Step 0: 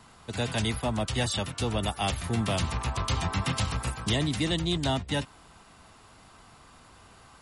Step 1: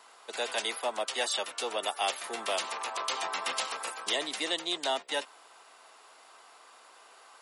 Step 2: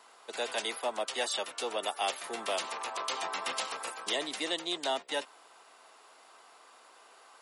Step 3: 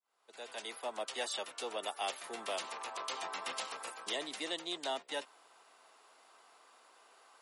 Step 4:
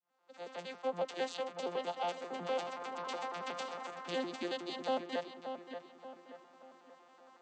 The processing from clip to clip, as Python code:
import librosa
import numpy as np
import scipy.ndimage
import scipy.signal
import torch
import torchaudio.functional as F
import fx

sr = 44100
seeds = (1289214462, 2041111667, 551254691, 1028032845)

y1 = scipy.signal.sosfilt(scipy.signal.butter(4, 430.0, 'highpass', fs=sr, output='sos'), x)
y2 = fx.low_shelf(y1, sr, hz=480.0, db=4.5)
y2 = F.gain(torch.from_numpy(y2), -2.5).numpy()
y3 = fx.fade_in_head(y2, sr, length_s=1.02)
y3 = F.gain(torch.from_numpy(y3), -5.5).numpy()
y4 = fx.vocoder_arp(y3, sr, chord='bare fifth', root=53, every_ms=92)
y4 = fx.echo_filtered(y4, sr, ms=580, feedback_pct=43, hz=3100.0, wet_db=-8)
y4 = F.gain(torch.from_numpy(y4), 2.5).numpy()